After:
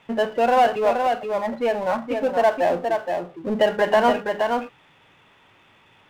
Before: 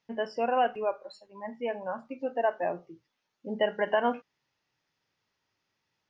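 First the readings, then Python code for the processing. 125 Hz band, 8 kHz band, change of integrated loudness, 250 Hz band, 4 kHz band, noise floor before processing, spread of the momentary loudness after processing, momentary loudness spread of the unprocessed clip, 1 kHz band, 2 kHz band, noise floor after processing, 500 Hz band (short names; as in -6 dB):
+11.5 dB, n/a, +9.0 dB, +10.5 dB, +10.0 dB, -82 dBFS, 9 LU, 15 LU, +10.5 dB, +9.5 dB, -56 dBFS, +10.5 dB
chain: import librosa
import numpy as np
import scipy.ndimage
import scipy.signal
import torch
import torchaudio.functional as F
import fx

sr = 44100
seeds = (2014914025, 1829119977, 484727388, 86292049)

y = scipy.signal.sosfilt(scipy.signal.cheby1(6, 3, 3600.0, 'lowpass', fs=sr, output='sos'), x)
y = y + 10.0 ** (-7.0 / 20.0) * np.pad(y, (int(472 * sr / 1000.0), 0))[:len(y)]
y = fx.power_curve(y, sr, exponent=0.7)
y = y * librosa.db_to_amplitude(7.5)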